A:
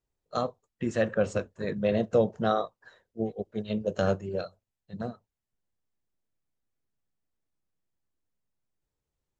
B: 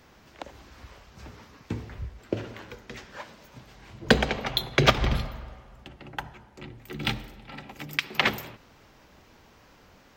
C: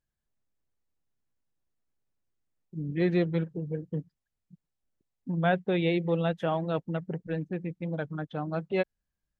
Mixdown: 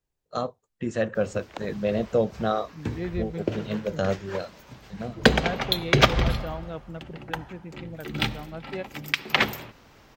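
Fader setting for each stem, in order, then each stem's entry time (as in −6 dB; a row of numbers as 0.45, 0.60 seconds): +0.5, +2.0, −6.5 decibels; 0.00, 1.15, 0.00 seconds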